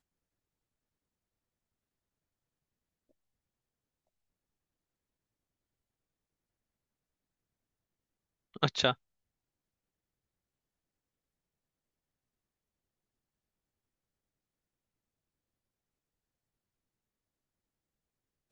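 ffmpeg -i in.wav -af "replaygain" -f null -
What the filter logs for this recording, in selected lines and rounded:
track_gain = +64.0 dB
track_peak = 0.257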